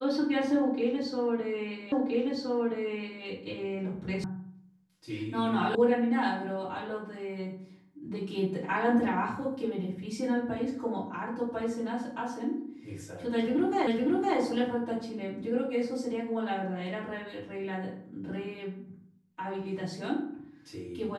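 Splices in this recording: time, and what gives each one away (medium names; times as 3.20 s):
1.92 s: repeat of the last 1.32 s
4.24 s: sound stops dead
5.75 s: sound stops dead
13.87 s: repeat of the last 0.51 s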